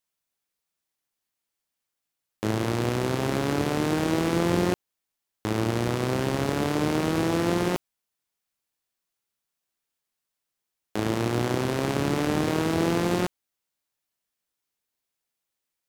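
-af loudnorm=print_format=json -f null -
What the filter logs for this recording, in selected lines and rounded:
"input_i" : "-26.3",
"input_tp" : "-10.5",
"input_lra" : "8.6",
"input_thresh" : "-36.4",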